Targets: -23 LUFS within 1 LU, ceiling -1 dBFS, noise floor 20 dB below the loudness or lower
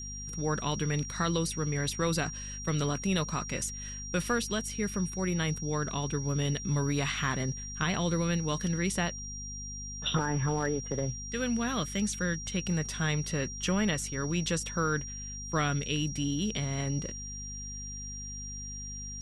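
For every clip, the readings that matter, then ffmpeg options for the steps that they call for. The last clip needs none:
hum 50 Hz; harmonics up to 250 Hz; hum level -41 dBFS; steady tone 5700 Hz; tone level -40 dBFS; loudness -31.5 LUFS; peak -16.5 dBFS; loudness target -23.0 LUFS
-> -af "bandreject=f=50:t=h:w=6,bandreject=f=100:t=h:w=6,bandreject=f=150:t=h:w=6,bandreject=f=200:t=h:w=6,bandreject=f=250:t=h:w=6"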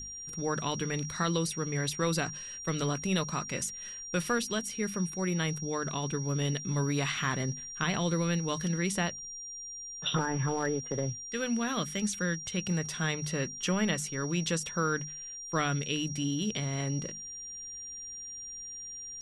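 hum none; steady tone 5700 Hz; tone level -40 dBFS
-> -af "bandreject=f=5.7k:w=30"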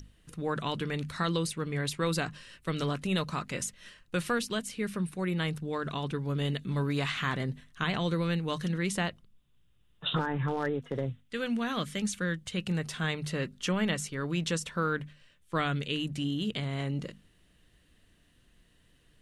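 steady tone none; loudness -32.5 LUFS; peak -16.5 dBFS; loudness target -23.0 LUFS
-> -af "volume=9.5dB"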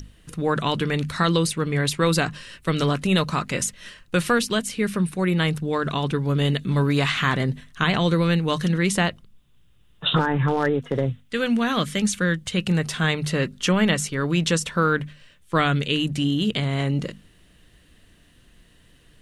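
loudness -23.0 LUFS; peak -7.0 dBFS; noise floor -56 dBFS

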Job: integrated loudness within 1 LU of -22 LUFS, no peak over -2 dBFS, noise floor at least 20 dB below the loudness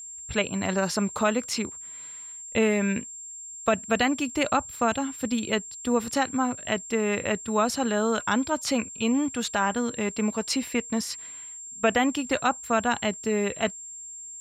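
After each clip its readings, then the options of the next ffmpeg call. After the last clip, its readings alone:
steady tone 7400 Hz; tone level -38 dBFS; loudness -26.5 LUFS; peak -12.5 dBFS; loudness target -22.0 LUFS
-> -af "bandreject=f=7.4k:w=30"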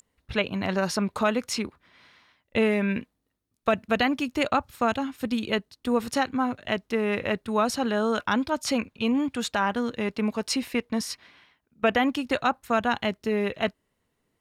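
steady tone none; loudness -27.0 LUFS; peak -13.0 dBFS; loudness target -22.0 LUFS
-> -af "volume=5dB"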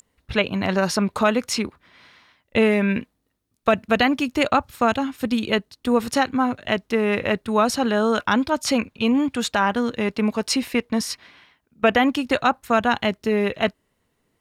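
loudness -22.0 LUFS; peak -8.0 dBFS; noise floor -72 dBFS

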